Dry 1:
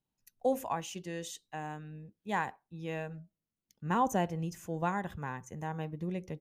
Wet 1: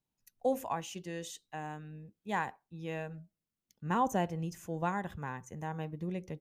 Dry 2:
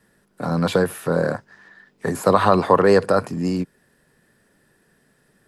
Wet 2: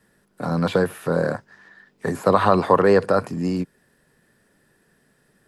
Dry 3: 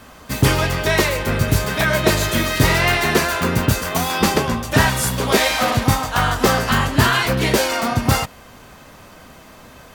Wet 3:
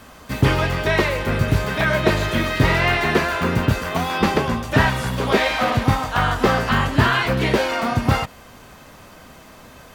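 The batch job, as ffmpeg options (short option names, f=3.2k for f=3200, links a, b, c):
-filter_complex "[0:a]acrossover=split=3800[a][b];[b]acompressor=threshold=-39dB:ratio=4:attack=1:release=60[c];[a][c]amix=inputs=2:normalize=0,volume=-1dB"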